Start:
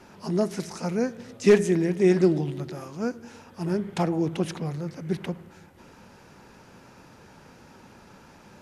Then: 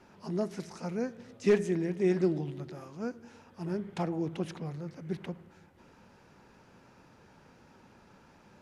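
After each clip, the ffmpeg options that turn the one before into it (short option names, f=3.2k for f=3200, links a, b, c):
-af "highshelf=f=7k:g=-8,volume=-7.5dB"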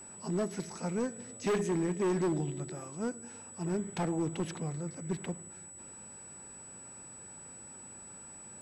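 -af "asoftclip=type=hard:threshold=-28dB,aeval=exprs='val(0)+0.00355*sin(2*PI*7900*n/s)':c=same,volume=1.5dB"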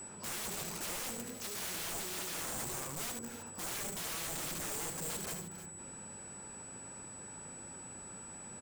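-filter_complex "[0:a]aeval=exprs='(mod(79.4*val(0)+1,2)-1)/79.4':c=same,asplit=2[a][b];[b]aecho=0:1:74|310:0.447|0.211[c];[a][c]amix=inputs=2:normalize=0,volume=2.5dB"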